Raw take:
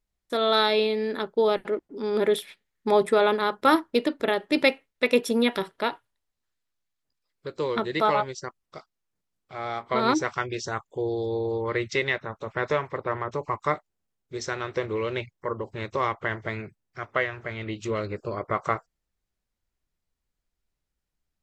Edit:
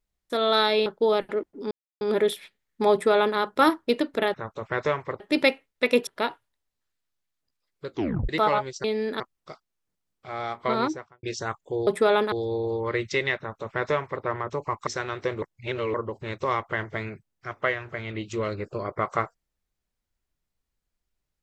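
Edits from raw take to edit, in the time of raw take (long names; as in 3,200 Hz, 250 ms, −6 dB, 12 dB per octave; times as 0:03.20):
0:00.86–0:01.22: move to 0:08.46
0:02.07: splice in silence 0.30 s
0:02.98–0:03.43: duplicate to 0:11.13
0:05.27–0:05.69: remove
0:07.53: tape stop 0.38 s
0:09.90–0:10.49: fade out and dull
0:12.19–0:13.05: duplicate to 0:04.40
0:13.68–0:14.39: remove
0:14.94–0:15.46: reverse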